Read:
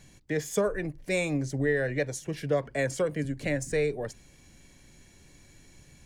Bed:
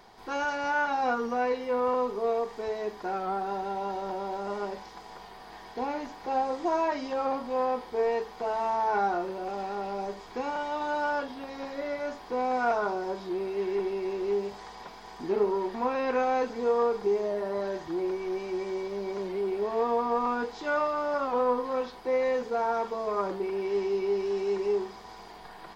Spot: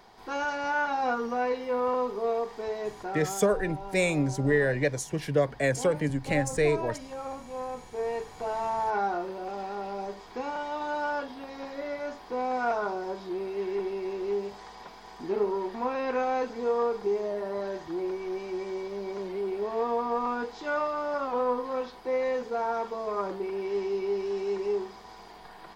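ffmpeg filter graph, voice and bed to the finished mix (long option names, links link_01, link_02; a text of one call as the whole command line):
ffmpeg -i stem1.wav -i stem2.wav -filter_complex "[0:a]adelay=2850,volume=2.5dB[link_01];[1:a]volume=6dB,afade=type=out:start_time=2.88:duration=0.55:silence=0.421697,afade=type=in:start_time=7.71:duration=0.78:silence=0.473151[link_02];[link_01][link_02]amix=inputs=2:normalize=0" out.wav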